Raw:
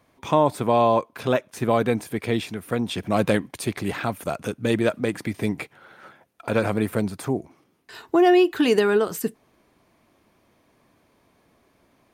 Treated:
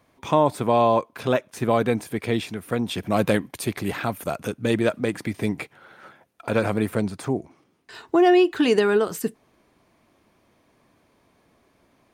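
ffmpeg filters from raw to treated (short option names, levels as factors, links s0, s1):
-af "asetnsamples=n=441:p=0,asendcmd='2.88 equalizer g 5.5;4.47 equalizer g -2;6.93 equalizer g -13;8.83 equalizer g -4.5',equalizer=f=13000:t=o:w=0.33:g=-1.5"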